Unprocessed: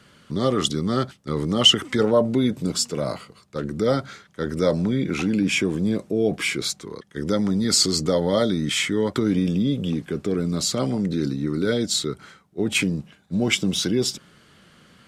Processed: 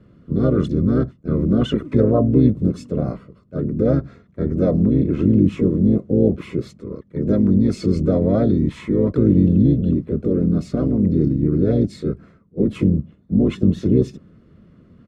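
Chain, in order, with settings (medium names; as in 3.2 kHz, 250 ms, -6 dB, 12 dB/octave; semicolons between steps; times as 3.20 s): boxcar filter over 56 samples; harmony voices -12 st -7 dB, +3 st -5 dB; trim +6.5 dB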